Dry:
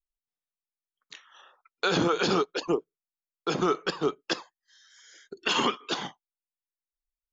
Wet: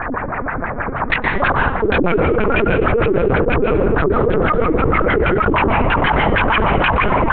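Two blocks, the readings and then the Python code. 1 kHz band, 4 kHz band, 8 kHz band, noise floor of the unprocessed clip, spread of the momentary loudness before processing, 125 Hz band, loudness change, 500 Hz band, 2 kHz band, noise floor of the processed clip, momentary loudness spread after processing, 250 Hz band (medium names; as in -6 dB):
+16.5 dB, +3.5 dB, no reading, under -85 dBFS, 9 LU, +21.0 dB, +12.0 dB, +15.5 dB, +18.0 dB, -24 dBFS, 8 LU, +14.0 dB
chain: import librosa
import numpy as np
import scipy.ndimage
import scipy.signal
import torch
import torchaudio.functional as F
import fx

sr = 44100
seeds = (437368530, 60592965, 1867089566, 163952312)

p1 = fx.peak_eq(x, sr, hz=260.0, db=3.0, octaves=0.42)
p2 = p1 + 0.68 * np.pad(p1, (int(2.0 * sr / 1000.0), 0))[:len(p1)]
p3 = fx.rider(p2, sr, range_db=10, speed_s=2.0)
p4 = p2 + F.gain(torch.from_numpy(p3), 0.0).numpy()
p5 = fx.step_gate(p4, sr, bpm=132, pattern='x..xx...x', floor_db=-24.0, edge_ms=4.5)
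p6 = fx.dmg_noise_band(p5, sr, seeds[0], low_hz=130.0, high_hz=1600.0, level_db=-67.0)
p7 = fx.fold_sine(p6, sr, drive_db=10, ceiling_db=-5.0)
p8 = fx.air_absorb(p7, sr, metres=240.0)
p9 = p8 + fx.echo_alternate(p8, sr, ms=224, hz=800.0, feedback_pct=75, wet_db=-7, dry=0)
p10 = fx.filter_lfo_lowpass(p9, sr, shape='sine', hz=6.3, low_hz=240.0, high_hz=2500.0, q=5.8)
p11 = fx.rev_plate(p10, sr, seeds[1], rt60_s=0.71, hf_ratio=0.75, predelay_ms=110, drr_db=9.5)
p12 = fx.lpc_vocoder(p11, sr, seeds[2], excitation='pitch_kept', order=8)
p13 = fx.env_flatten(p12, sr, amount_pct=100)
y = F.gain(torch.from_numpy(p13), -14.0).numpy()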